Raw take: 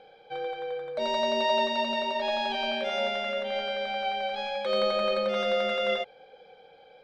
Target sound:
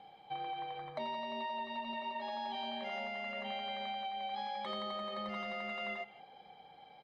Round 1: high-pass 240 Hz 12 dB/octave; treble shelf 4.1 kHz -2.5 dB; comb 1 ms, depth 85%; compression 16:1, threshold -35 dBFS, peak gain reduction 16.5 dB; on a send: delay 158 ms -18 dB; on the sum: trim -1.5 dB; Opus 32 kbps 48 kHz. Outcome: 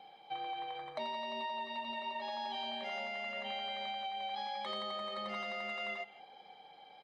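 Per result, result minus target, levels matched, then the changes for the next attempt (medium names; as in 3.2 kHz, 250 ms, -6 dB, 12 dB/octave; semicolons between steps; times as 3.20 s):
125 Hz band -6.0 dB; 8 kHz band +5.0 dB
change: high-pass 99 Hz 12 dB/octave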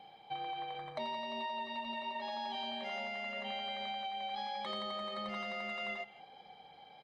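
8 kHz band +4.5 dB
change: treble shelf 4.1 kHz -11 dB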